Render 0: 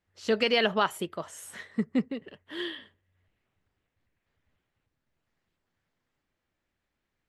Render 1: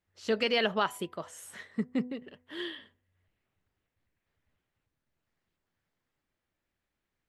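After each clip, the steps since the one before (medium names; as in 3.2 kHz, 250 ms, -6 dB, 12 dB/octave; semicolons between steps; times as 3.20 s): de-hum 248.6 Hz, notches 4; trim -3 dB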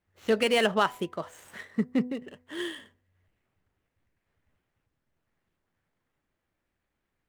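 median filter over 9 samples; trim +4.5 dB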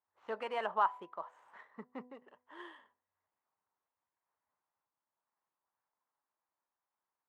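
band-pass filter 970 Hz, Q 3.7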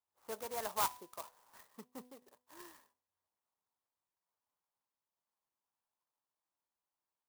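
sampling jitter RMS 0.1 ms; trim -4 dB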